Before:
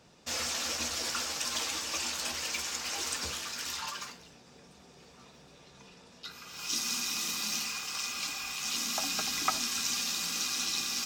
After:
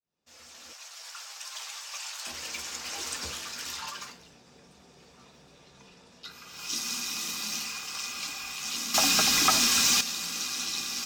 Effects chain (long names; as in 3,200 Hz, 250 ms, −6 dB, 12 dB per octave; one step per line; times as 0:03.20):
fade in at the beginning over 3.28 s
0:00.73–0:02.27: high-pass filter 700 Hz 24 dB per octave
0:08.94–0:10.01: leveller curve on the samples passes 3